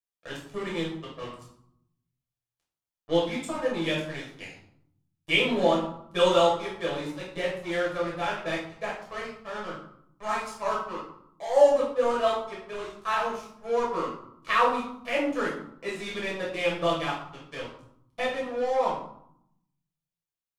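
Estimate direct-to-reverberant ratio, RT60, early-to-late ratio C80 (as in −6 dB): −5.5 dB, 0.70 s, 8.0 dB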